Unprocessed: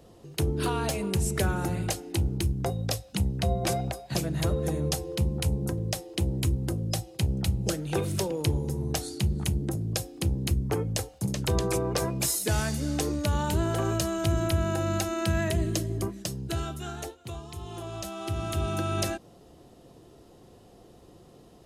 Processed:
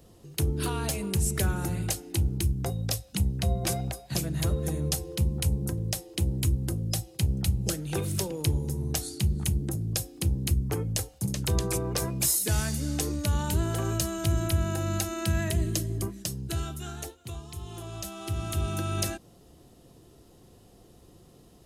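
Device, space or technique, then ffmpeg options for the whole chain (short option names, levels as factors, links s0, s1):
smiley-face EQ: -af "lowshelf=f=120:g=4.5,equalizer=f=640:t=o:w=1.7:g=-3.5,highshelf=f=7500:g=8.5,volume=0.794"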